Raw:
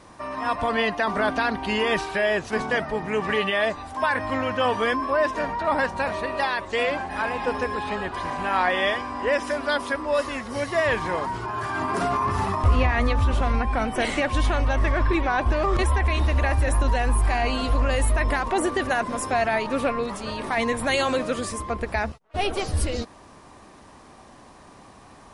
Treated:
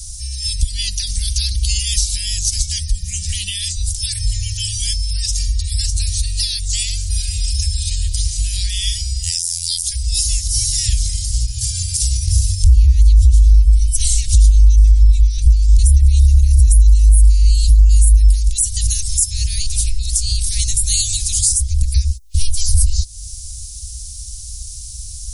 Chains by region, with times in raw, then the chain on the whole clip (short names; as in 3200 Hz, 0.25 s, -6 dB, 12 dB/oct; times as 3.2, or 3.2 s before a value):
9.23–9.83 robotiser 84.6 Hz + high shelf 3600 Hz +12 dB
whole clip: inverse Chebyshev band-stop 300–1300 Hz, stop band 80 dB; compressor 2.5:1, threshold -44 dBFS; maximiser +32 dB; gain -1.5 dB